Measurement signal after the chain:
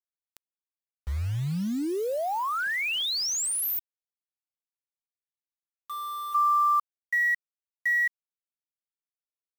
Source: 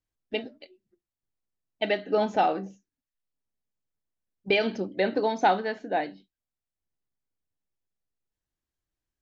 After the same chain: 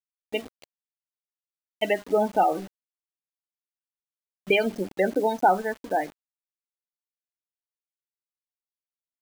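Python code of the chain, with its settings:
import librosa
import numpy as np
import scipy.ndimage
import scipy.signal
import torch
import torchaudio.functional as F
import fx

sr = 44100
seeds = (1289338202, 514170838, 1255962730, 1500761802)

y = np.sign(x) * np.maximum(np.abs(x) - 10.0 ** (-42.0 / 20.0), 0.0)
y = fx.spec_gate(y, sr, threshold_db=-20, keep='strong')
y = fx.quant_dither(y, sr, seeds[0], bits=8, dither='none')
y = y * librosa.db_to_amplitude(3.0)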